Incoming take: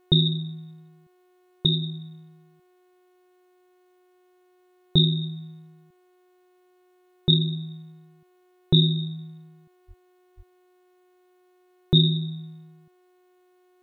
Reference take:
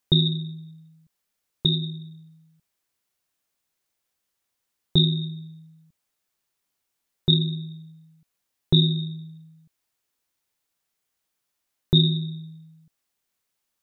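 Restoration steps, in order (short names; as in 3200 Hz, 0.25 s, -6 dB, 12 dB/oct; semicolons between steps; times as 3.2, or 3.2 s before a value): de-hum 363.6 Hz, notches 12; de-plosive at 9.87/10.36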